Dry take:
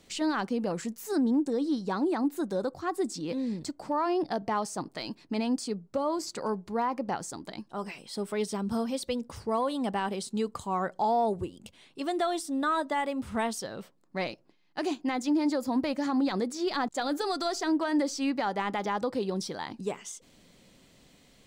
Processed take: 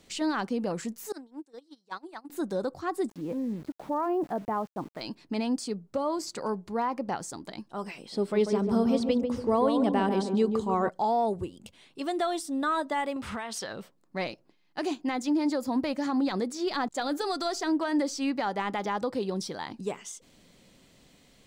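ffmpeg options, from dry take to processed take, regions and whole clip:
-filter_complex "[0:a]asettb=1/sr,asplit=3[a][b][c];[a]atrim=end=1.124[d];[b]atrim=start=1.12:end=2.3,asetpts=PTS-STARTPTS,afade=t=in:d=0.004:c=qsin,afade=t=out:st=1.176:d=0.004:c=qsin,highpass=f=1.1k:p=1,agate=range=-23dB:threshold=-36dB:ratio=16:release=100:detection=peak[e];[c]atrim=start=2.296[f];[d][e]acrossfade=d=0.004:c1=hsin:c2=qsin[g];[g][f]acrossfade=d=0.004:c1=qsin:c2=hsin,asettb=1/sr,asplit=3[h][i][j];[h]atrim=end=3.094[k];[i]atrim=start=3.09:end=5.01,asetpts=PTS-STARTPTS,afade=t=in:d=0.004:c=qsin,afade=t=out:st=1.916:d=0.004:c=qsin,lowpass=1.3k,aeval=exprs='val(0)*gte(abs(val(0)),0.00376)':c=same[l];[j]atrim=start=5.006[m];[k][l]acrossfade=d=0.004:c1=hsin:c2=qsin[n];[n][m]acrossfade=d=0.004:c1=qsin:c2=hsin,asettb=1/sr,asplit=3[o][p][q];[o]atrim=end=7.984[r];[p]atrim=start=7.98:end=10.89,asetpts=PTS-STARTPTS,afade=t=in:d=0.004:c=qsin,afade=t=out:st=2.906:d=0.004:c=qsin,equalizer=f=340:w=0.82:g=7,acrossover=split=6500[s][t];[t]acompressor=threshold=-59dB:ratio=4:attack=1:release=60[u];[s][u]amix=inputs=2:normalize=0,asplit=2[v][w];[w]adelay=143,lowpass=f=910:p=1,volume=-4dB,asplit=2[x][y];[y]adelay=143,lowpass=f=910:p=1,volume=0.47,asplit=2[z][aa];[aa]adelay=143,lowpass=f=910:p=1,volume=0.47,asplit=2[ab][ac];[ac]adelay=143,lowpass=f=910:p=1,volume=0.47,asplit=2[ad][ae];[ae]adelay=143,lowpass=f=910:p=1,volume=0.47,asplit=2[af][ag];[ag]adelay=143,lowpass=f=910:p=1,volume=0.47[ah];[v][x][z][ab][ad][af][ah]amix=inputs=7:normalize=0,atrim=end_sample=128331[ai];[q]atrim=start=10.886[aj];[r][ai]acrossfade=d=0.004:c1=hsin:c2=qsin[ak];[ak][aj]acrossfade=d=0.004:c1=qsin:c2=hsin,asettb=1/sr,asplit=3[al][am][an];[al]atrim=end=13.164[ao];[am]atrim=start=13.16:end=13.73,asetpts=PTS-STARTPTS,afade=t=in:d=0.004:c=qsin,afade=t=out:st=0.566:d=0.004:c=qsin,equalizer=f=2k:w=0.33:g=12.5,acompressor=threshold=-31dB:ratio=16:attack=3.2:release=140:knee=1:detection=peak[ap];[an]atrim=start=13.726[aq];[ao][ap]acrossfade=d=0.004:c1=hsin:c2=qsin[ar];[ar][aq]acrossfade=d=0.004:c1=qsin:c2=hsin"

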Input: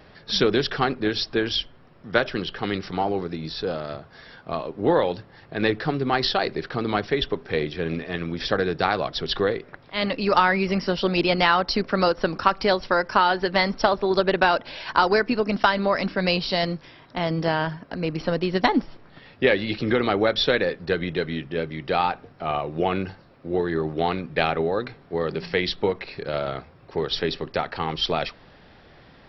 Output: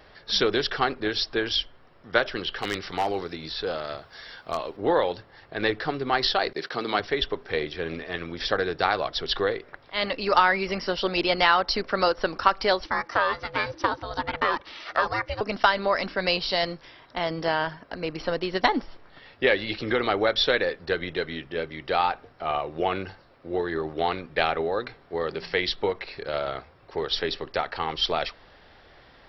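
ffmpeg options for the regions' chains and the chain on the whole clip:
-filter_complex "[0:a]asettb=1/sr,asplit=3[a][b][c];[a]atrim=end=2.444[d];[b]atrim=start=2.44:end=4.77,asetpts=PTS-STARTPTS,afade=t=in:d=0.004:c=qsin,afade=t=out:st=2.326:d=0.004:c=qsin,acrossover=split=3600[e][f];[f]acompressor=threshold=-52dB:ratio=4:attack=1:release=60[g];[e][g]amix=inputs=2:normalize=0,highshelf=f=2.9k:g=10.5,aeval=exprs='0.178*(abs(mod(val(0)/0.178+3,4)-2)-1)':c=same[h];[c]atrim=start=4.766[i];[d][h]acrossfade=d=0.004:c1=hsin:c2=qsin[j];[j][i]acrossfade=d=0.004:c1=qsin:c2=hsin,asettb=1/sr,asplit=3[k][l][m];[k]atrim=end=6.534[n];[l]atrim=start=6.53:end=7,asetpts=PTS-STARTPTS,afade=t=in:d=0.004:c=qsin,afade=t=out:st=0.466:d=0.004:c=qsin,highpass=f=140:w=0.5412,highpass=f=140:w=1.3066,highshelf=f=4.1k:g=9.5,agate=range=-33dB:threshold=-37dB:ratio=3:release=100:detection=peak[o];[m]atrim=start=6.996[p];[n][o]acrossfade=d=0.004:c1=hsin:c2=qsin[q];[q][p]acrossfade=d=0.004:c1=qsin:c2=hsin,asettb=1/sr,asplit=3[r][s][t];[r]atrim=end=12.854[u];[s]atrim=start=12.85:end=15.41,asetpts=PTS-STARTPTS,afade=t=in:d=0.004:c=qsin,afade=t=out:st=2.556:d=0.004:c=qsin,acrossover=split=3200[v][w];[w]acompressor=threshold=-40dB:ratio=4:attack=1:release=60[x];[v][x]amix=inputs=2:normalize=0,equalizer=f=380:w=2.6:g=-13,aeval=exprs='val(0)*sin(2*PI*320*n/s)':c=same[y];[t]atrim=start=15.406[z];[u][y]acrossfade=d=0.004:c1=hsin:c2=qsin[aa];[aa][z]acrossfade=d=0.004:c1=qsin:c2=hsin,equalizer=f=170:t=o:w=1.8:g=-10,bandreject=f=2.5k:w=26"

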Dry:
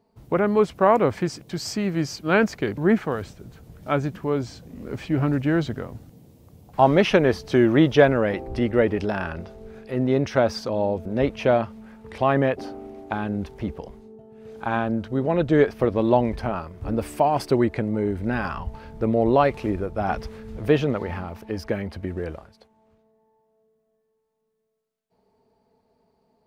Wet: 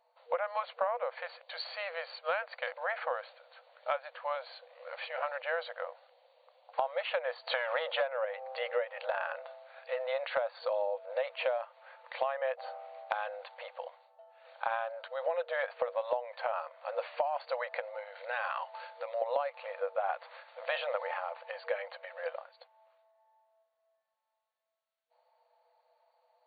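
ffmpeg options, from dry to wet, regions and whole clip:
-filter_complex "[0:a]asettb=1/sr,asplit=3[a][b][c];[a]atrim=end=7.474[d];[b]atrim=start=7.47:end=8.25,asetpts=PTS-STARTPTS,afade=t=in:d=0.004:c=qsin,afade=t=out:st=0.776:d=0.004:c=qsin,highpass=f=220:w=0.5412,highpass=f=220:w=1.3066,acontrast=64[e];[c]atrim=start=8.246[f];[d][e]acrossfade=d=0.004:c1=hsin:c2=qsin[g];[g][f]acrossfade=d=0.004:c1=qsin:c2=hsin,asettb=1/sr,asplit=3[h][i][j];[h]atrim=end=17.794[k];[i]atrim=start=17.79:end=19.22,asetpts=PTS-STARTPTS,afade=t=in:d=0.004:c=qsin,afade=t=out:st=1.426:d=0.004:c=qsin,highpass=280,highshelf=f=4.1k:g=11,acompressor=threshold=-28dB:ratio=3:attack=3.2:release=140:knee=1:detection=peak[l];[j]atrim=start=19.216[m];[k][l]acrossfade=d=0.004:c1=hsin:c2=qsin[n];[n][m]acrossfade=d=0.004:c1=qsin:c2=hsin,afftfilt=real='re*between(b*sr/4096,480,4600)':imag='im*between(b*sr/4096,480,4600)':win_size=4096:overlap=0.75,acompressor=threshold=-28dB:ratio=20,adynamicequalizer=threshold=0.00447:dfrequency=2100:dqfactor=0.7:tfrequency=2100:tqfactor=0.7:attack=5:release=100:ratio=0.375:range=3:mode=cutabove:tftype=highshelf"

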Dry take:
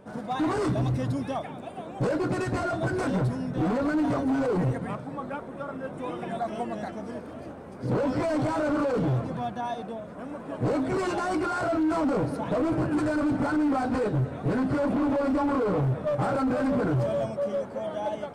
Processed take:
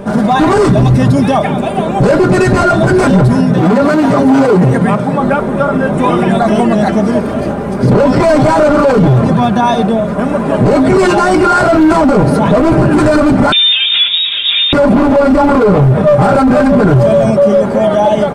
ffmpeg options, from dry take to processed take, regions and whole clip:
-filter_complex "[0:a]asettb=1/sr,asplit=3[a][b][c];[a]atrim=end=3.354[d];[b]atrim=start=3.35:end=5.2,asetpts=PTS-STARTPTS,afade=t=in:d=0.004:c=qsin,afade=t=out:st=1.846:d=0.004:c=qsin,highpass=110,bandreject=f=50:t=h:w=6,bandreject=f=100:t=h:w=6,bandreject=f=150:t=h:w=6,bandreject=f=200:t=h:w=6,bandreject=f=250:t=h:w=6,bandreject=f=300:t=h:w=6,bandreject=f=350:t=h:w=6,bandreject=f=400:t=h:w=6[e];[c]atrim=start=5.196[f];[d][e]acrossfade=d=0.004:c1=hsin:c2=qsin[g];[g][f]acrossfade=d=0.004:c1=qsin:c2=hsin,asettb=1/sr,asplit=3[h][i][j];[h]atrim=end=13.524[k];[i]atrim=start=13.52:end=14.73,asetpts=PTS-STARTPTS,afade=t=in:d=0.004:c=qsin,afade=t=out:st=1.206:d=0.004:c=qsin,highpass=f=410:p=1,acompressor=threshold=-33dB:ratio=3:attack=3.2:release=140:knee=1:detection=peak,lowpass=f=3.3k:t=q:w=0.5098,lowpass=f=3.3k:t=q:w=0.6013,lowpass=f=3.3k:t=q:w=0.9,lowpass=f=3.3k:t=q:w=2.563,afreqshift=-3900[l];[j]atrim=start=14.726[m];[k][l]acrossfade=d=0.004:c1=hsin:c2=qsin[n];[n][m]acrossfade=d=0.004:c1=qsin:c2=hsin,lowshelf=f=180:g=5.5,aecho=1:1:5:0.47,alimiter=level_in=23.5dB:limit=-1dB:release=50:level=0:latency=1,volume=-1dB"

